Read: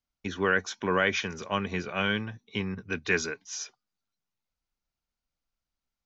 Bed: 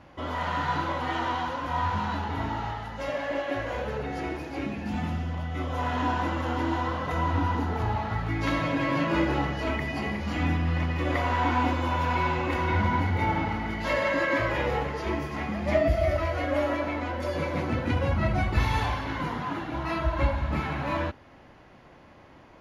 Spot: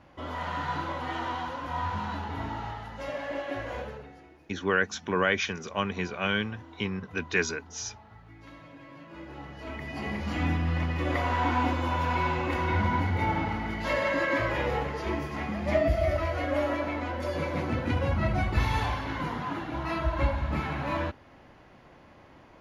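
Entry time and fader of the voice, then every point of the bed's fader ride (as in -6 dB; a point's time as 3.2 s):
4.25 s, 0.0 dB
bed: 3.8 s -4 dB
4.27 s -22 dB
9.07 s -22 dB
10.16 s -1.5 dB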